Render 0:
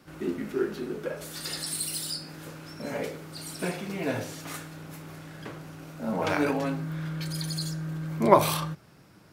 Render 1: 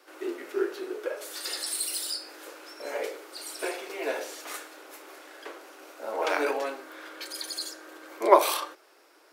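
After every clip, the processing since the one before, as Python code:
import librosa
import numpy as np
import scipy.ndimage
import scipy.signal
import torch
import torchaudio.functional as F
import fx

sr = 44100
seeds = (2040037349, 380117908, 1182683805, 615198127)

y = scipy.signal.sosfilt(scipy.signal.butter(8, 340.0, 'highpass', fs=sr, output='sos'), x)
y = y * 10.0 ** (1.0 / 20.0)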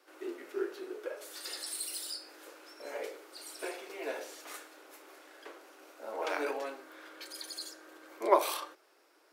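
y = fx.low_shelf(x, sr, hz=160.0, db=4.5)
y = y * 10.0 ** (-7.5 / 20.0)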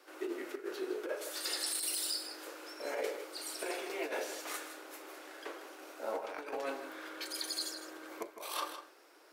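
y = fx.over_compress(x, sr, threshold_db=-39.0, ratio=-0.5)
y = y + 10.0 ** (-10.5 / 20.0) * np.pad(y, (int(158 * sr / 1000.0), 0))[:len(y)]
y = y * 10.0 ** (1.0 / 20.0)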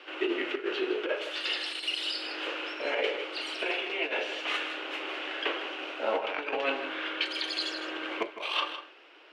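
y = fx.lowpass_res(x, sr, hz=2900.0, q=5.2)
y = fx.rider(y, sr, range_db=4, speed_s=0.5)
y = y * 10.0 ** (6.5 / 20.0)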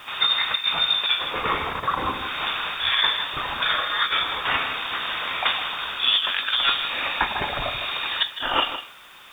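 y = fx.freq_invert(x, sr, carrier_hz=4000)
y = fx.dmg_noise_colour(y, sr, seeds[0], colour='white', level_db=-66.0)
y = y * 10.0 ** (8.5 / 20.0)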